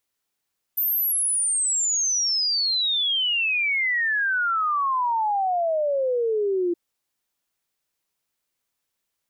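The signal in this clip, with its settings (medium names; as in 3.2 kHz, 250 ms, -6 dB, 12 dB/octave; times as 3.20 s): log sweep 14 kHz -> 340 Hz 5.97 s -20 dBFS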